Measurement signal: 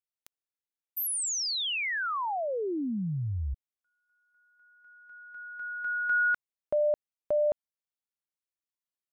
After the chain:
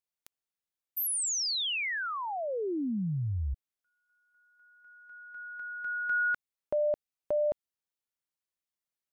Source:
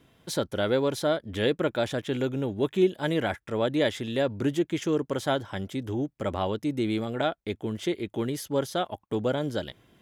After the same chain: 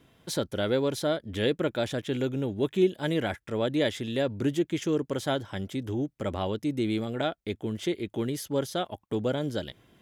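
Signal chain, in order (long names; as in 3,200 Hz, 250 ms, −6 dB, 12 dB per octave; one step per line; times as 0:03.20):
dynamic equaliser 1,000 Hz, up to −4 dB, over −42 dBFS, Q 0.81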